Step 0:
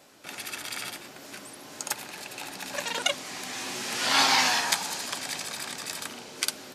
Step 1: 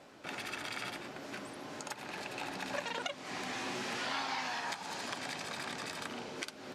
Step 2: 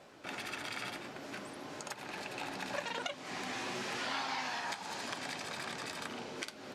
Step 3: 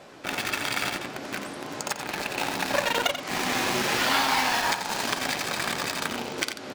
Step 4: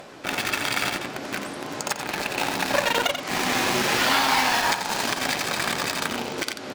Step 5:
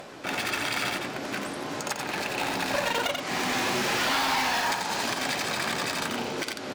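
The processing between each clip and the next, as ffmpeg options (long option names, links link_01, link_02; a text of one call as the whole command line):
ffmpeg -i in.wav -af "acompressor=threshold=-33dB:ratio=8,aemphasis=mode=reproduction:type=75fm,volume=1dB" out.wav
ffmpeg -i in.wav -af "flanger=delay=1.7:depth=8.1:regen=-80:speed=0.53:shape=sinusoidal,volume=4dB" out.wav
ffmpeg -i in.wav -filter_complex "[0:a]asplit=2[link_01][link_02];[link_02]acrusher=bits=5:mix=0:aa=0.000001,volume=-4dB[link_03];[link_01][link_03]amix=inputs=2:normalize=0,aecho=1:1:88:0.355,volume=9dB" out.wav
ffmpeg -i in.wav -af "acompressor=mode=upward:threshold=-43dB:ratio=2.5,alimiter=level_in=11dB:limit=-1dB:release=50:level=0:latency=1,volume=-8dB" out.wav
ffmpeg -i in.wav -af "asoftclip=type=tanh:threshold=-20.5dB" out.wav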